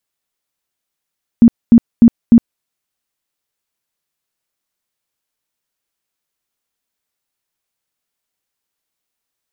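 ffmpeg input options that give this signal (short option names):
-f lavfi -i "aevalsrc='0.841*sin(2*PI*233*mod(t,0.3))*lt(mod(t,0.3),14/233)':d=1.2:s=44100"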